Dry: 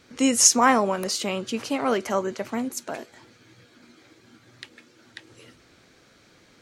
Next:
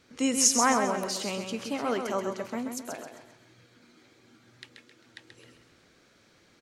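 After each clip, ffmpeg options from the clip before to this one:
-af "aecho=1:1:132|264|396|528|660:0.473|0.189|0.0757|0.0303|0.0121,volume=-6dB"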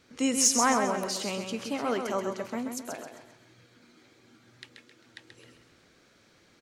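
-af "asoftclip=type=tanh:threshold=-10.5dB"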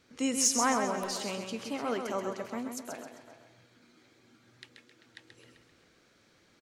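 -filter_complex "[0:a]asplit=2[a][b];[b]adelay=390,highpass=300,lowpass=3.4k,asoftclip=type=hard:threshold=-21dB,volume=-13dB[c];[a][c]amix=inputs=2:normalize=0,volume=-3.5dB"

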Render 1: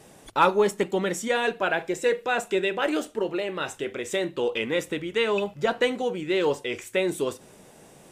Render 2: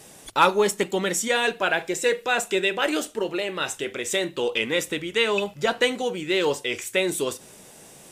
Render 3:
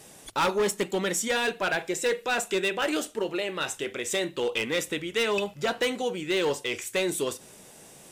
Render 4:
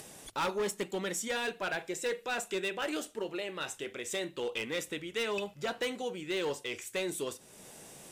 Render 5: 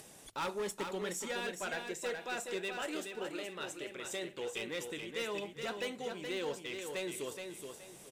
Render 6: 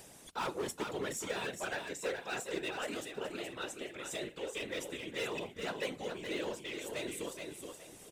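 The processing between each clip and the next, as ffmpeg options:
-af "highshelf=f=2.4k:g=9.5"
-af "volume=18dB,asoftclip=hard,volume=-18dB,volume=-2.5dB"
-af "acompressor=mode=upward:threshold=-35dB:ratio=2.5,volume=-7.5dB"
-af "aecho=1:1:423|846|1269|1692:0.501|0.155|0.0482|0.0149,volume=-5dB"
-af "afftfilt=real='hypot(re,im)*cos(2*PI*random(0))':imag='hypot(re,im)*sin(2*PI*random(1))':win_size=512:overlap=0.75,volume=6dB"

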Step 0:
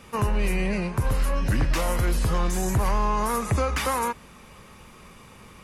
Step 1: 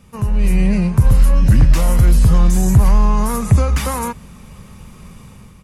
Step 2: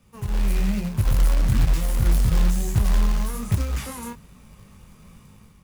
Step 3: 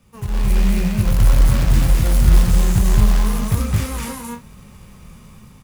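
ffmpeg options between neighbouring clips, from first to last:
-af "firequalizer=gain_entry='entry(180,0);entry(310,-10);entry(1600,-13);entry(7500,-7)':delay=0.05:min_phase=1,dynaudnorm=f=120:g=7:m=8.5dB,volume=5dB"
-filter_complex "[0:a]acrossover=split=430|1600[a][b][c];[b]asoftclip=type=hard:threshold=-33dB[d];[a][d][c]amix=inputs=3:normalize=0,flanger=delay=18.5:depth=6.9:speed=1.1,acrusher=bits=4:mode=log:mix=0:aa=0.000001,volume=-7dB"
-af "aecho=1:1:218.7|256.6:0.891|0.447,volume=3dB"

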